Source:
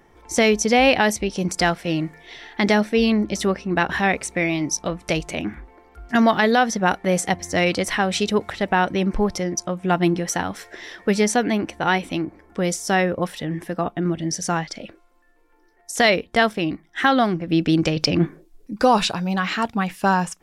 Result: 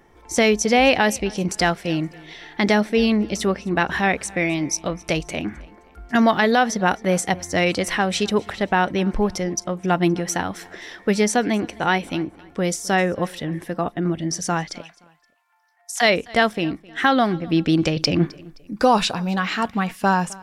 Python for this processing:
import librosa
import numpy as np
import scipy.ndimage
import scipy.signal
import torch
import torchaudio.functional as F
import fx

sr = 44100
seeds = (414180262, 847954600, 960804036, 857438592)

y = fx.steep_highpass(x, sr, hz=660.0, slope=96, at=(14.81, 16.01), fade=0.02)
y = fx.echo_feedback(y, sr, ms=261, feedback_pct=36, wet_db=-23)